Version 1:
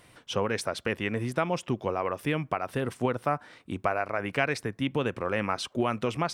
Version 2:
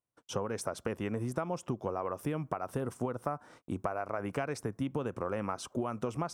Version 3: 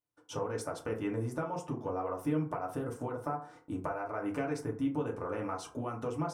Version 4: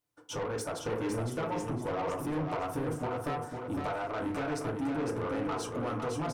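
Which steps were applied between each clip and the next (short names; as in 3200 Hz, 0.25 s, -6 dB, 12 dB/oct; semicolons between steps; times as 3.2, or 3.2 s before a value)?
gate -50 dBFS, range -36 dB; band shelf 2800 Hz -10.5 dB; compressor, threshold -30 dBFS, peak gain reduction 9 dB
FDN reverb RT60 0.41 s, low-frequency decay 0.85×, high-frequency decay 0.45×, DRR -2 dB; gain -5.5 dB
soft clip -36.5 dBFS, distortion -8 dB; feedback echo 0.507 s, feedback 28%, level -5 dB; gain +6 dB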